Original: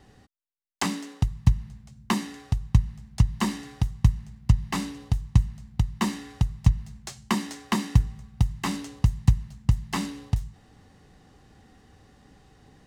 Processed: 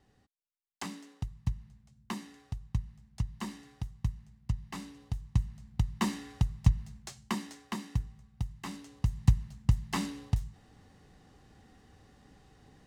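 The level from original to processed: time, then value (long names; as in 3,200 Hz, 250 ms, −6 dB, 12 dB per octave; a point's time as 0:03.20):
0:04.84 −13 dB
0:05.90 −4.5 dB
0:06.87 −4.5 dB
0:07.80 −12.5 dB
0:08.84 −12.5 dB
0:09.26 −4 dB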